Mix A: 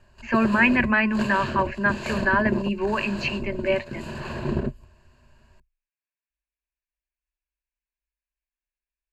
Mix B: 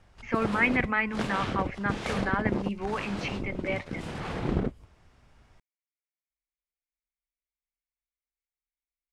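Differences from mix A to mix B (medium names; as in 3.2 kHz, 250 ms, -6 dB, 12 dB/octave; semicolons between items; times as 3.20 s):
speech -5.5 dB; master: remove rippled EQ curve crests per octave 1.4, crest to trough 13 dB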